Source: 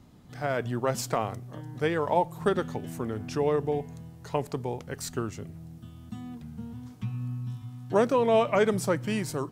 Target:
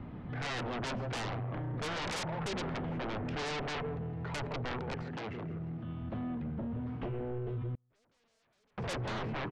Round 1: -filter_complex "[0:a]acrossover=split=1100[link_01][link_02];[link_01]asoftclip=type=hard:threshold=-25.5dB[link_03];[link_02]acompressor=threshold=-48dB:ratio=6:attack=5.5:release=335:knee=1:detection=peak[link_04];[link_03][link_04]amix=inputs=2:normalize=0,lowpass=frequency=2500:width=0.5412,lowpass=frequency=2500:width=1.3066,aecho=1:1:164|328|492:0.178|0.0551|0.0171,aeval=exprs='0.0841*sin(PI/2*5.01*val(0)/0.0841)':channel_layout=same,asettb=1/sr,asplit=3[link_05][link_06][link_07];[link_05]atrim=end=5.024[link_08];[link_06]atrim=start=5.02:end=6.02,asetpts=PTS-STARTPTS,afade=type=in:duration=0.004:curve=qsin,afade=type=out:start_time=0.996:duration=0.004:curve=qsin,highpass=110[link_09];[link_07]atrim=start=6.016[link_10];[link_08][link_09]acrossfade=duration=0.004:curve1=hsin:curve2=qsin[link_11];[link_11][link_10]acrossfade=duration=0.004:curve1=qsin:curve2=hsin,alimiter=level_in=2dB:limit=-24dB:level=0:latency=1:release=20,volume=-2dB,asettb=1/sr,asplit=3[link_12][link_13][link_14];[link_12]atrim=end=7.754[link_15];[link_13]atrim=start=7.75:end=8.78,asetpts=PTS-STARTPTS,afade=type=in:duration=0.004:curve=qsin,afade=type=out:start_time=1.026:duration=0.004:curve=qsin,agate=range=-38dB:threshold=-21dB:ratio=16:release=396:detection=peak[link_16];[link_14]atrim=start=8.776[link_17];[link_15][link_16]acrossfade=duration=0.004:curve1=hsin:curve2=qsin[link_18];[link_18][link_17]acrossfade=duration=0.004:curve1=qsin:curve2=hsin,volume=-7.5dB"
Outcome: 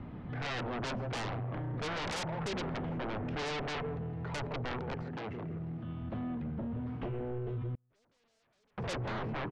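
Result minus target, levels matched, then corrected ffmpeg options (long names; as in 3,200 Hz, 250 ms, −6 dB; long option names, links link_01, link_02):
downward compressor: peak gain reduction +6 dB
-filter_complex "[0:a]acrossover=split=1100[link_01][link_02];[link_01]asoftclip=type=hard:threshold=-25.5dB[link_03];[link_02]acompressor=threshold=-40.5dB:ratio=6:attack=5.5:release=335:knee=1:detection=peak[link_04];[link_03][link_04]amix=inputs=2:normalize=0,lowpass=frequency=2500:width=0.5412,lowpass=frequency=2500:width=1.3066,aecho=1:1:164|328|492:0.178|0.0551|0.0171,aeval=exprs='0.0841*sin(PI/2*5.01*val(0)/0.0841)':channel_layout=same,asettb=1/sr,asplit=3[link_05][link_06][link_07];[link_05]atrim=end=5.024[link_08];[link_06]atrim=start=5.02:end=6.02,asetpts=PTS-STARTPTS,afade=type=in:duration=0.004:curve=qsin,afade=type=out:start_time=0.996:duration=0.004:curve=qsin,highpass=110[link_09];[link_07]atrim=start=6.016[link_10];[link_08][link_09]acrossfade=duration=0.004:curve1=hsin:curve2=qsin[link_11];[link_11][link_10]acrossfade=duration=0.004:curve1=qsin:curve2=hsin,alimiter=level_in=2dB:limit=-24dB:level=0:latency=1:release=20,volume=-2dB,asettb=1/sr,asplit=3[link_12][link_13][link_14];[link_12]atrim=end=7.754[link_15];[link_13]atrim=start=7.75:end=8.78,asetpts=PTS-STARTPTS,afade=type=in:duration=0.004:curve=qsin,afade=type=out:start_time=1.026:duration=0.004:curve=qsin,agate=range=-38dB:threshold=-21dB:ratio=16:release=396:detection=peak[link_16];[link_14]atrim=start=8.776[link_17];[link_15][link_16]acrossfade=duration=0.004:curve1=hsin:curve2=qsin[link_18];[link_18][link_17]acrossfade=duration=0.004:curve1=qsin:curve2=hsin,volume=-7.5dB"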